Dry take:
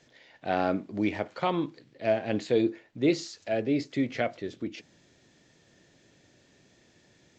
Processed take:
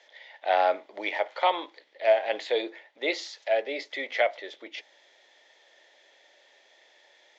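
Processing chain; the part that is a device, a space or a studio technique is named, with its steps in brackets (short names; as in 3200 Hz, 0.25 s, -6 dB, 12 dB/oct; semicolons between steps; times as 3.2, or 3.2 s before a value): phone speaker on a table (speaker cabinet 470–6500 Hz, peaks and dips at 590 Hz +6 dB, 860 Hz +9 dB, 2000 Hz +10 dB, 3400 Hz +9 dB)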